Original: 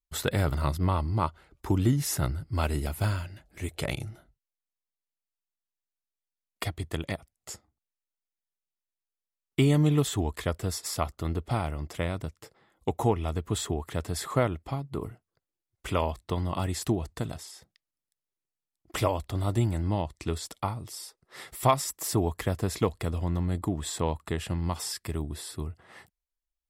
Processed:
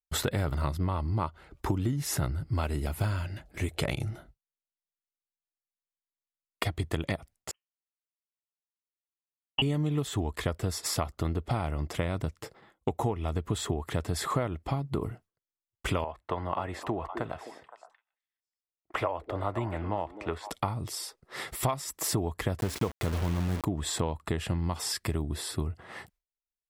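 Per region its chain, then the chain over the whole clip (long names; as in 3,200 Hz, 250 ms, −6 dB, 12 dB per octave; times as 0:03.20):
0:07.51–0:09.62: voice inversion scrambler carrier 3,100 Hz + expander for the loud parts 2.5 to 1, over −44 dBFS
0:16.04–0:20.50: three-way crossover with the lows and the highs turned down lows −14 dB, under 480 Hz, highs −19 dB, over 2,400 Hz + echo through a band-pass that steps 258 ms, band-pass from 360 Hz, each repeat 1.4 octaves, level −9 dB
0:22.60–0:23.65: hum removal 277.2 Hz, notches 25 + bit-depth reduction 6 bits, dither none
whole clip: noise gate with hold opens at −53 dBFS; high-shelf EQ 4,600 Hz −5.5 dB; downward compressor 6 to 1, threshold −34 dBFS; level +7.5 dB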